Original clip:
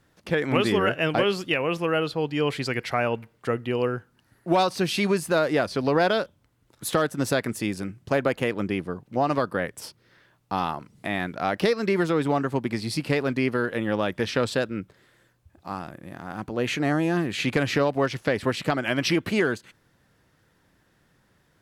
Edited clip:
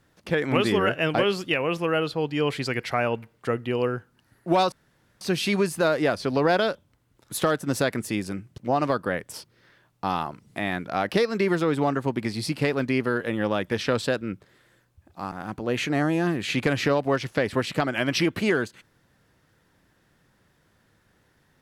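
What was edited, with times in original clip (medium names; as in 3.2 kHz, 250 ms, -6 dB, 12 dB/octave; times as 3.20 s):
4.72 s: insert room tone 0.49 s
8.09–9.06 s: delete
15.80–16.22 s: delete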